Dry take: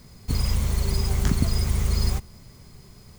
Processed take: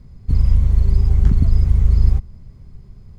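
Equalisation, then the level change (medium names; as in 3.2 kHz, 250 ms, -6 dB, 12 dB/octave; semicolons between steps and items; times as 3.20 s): RIAA curve playback; -6.5 dB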